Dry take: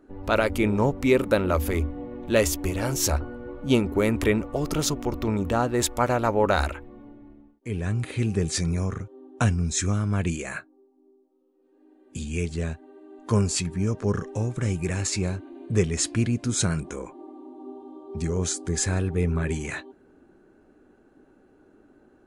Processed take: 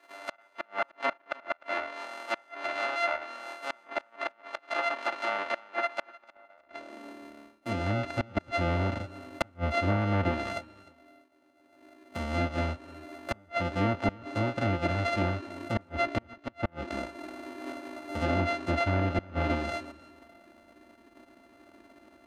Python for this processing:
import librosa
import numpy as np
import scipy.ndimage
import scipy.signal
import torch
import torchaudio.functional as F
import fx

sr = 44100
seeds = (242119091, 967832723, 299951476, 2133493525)

p1 = np.r_[np.sort(x[:len(x) // 64 * 64].reshape(-1, 64), axis=1).ravel(), x[len(x) // 64 * 64:]]
p2 = fx.env_lowpass_down(p1, sr, base_hz=2200.0, full_db=-19.5)
p3 = fx.bass_treble(p2, sr, bass_db=-3, treble_db=-10)
p4 = fx.filter_sweep_highpass(p3, sr, from_hz=840.0, to_hz=69.0, start_s=6.18, end_s=7.99, q=0.88)
p5 = fx.gate_flip(p4, sr, shuts_db=-15.0, range_db=-35)
p6 = p5 + 0.66 * np.pad(p5, (int(3.4 * sr / 1000.0), 0))[:len(p5)]
y = p6 + fx.echo_feedback(p6, sr, ms=304, feedback_pct=23, wet_db=-21, dry=0)